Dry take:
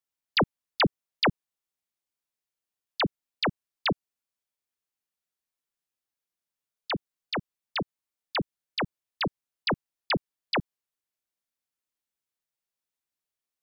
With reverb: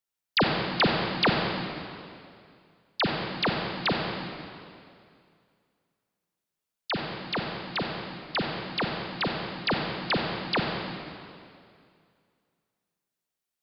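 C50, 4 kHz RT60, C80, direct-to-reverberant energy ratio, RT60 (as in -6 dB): 1.5 dB, 2.1 s, 2.5 dB, 0.5 dB, 2.3 s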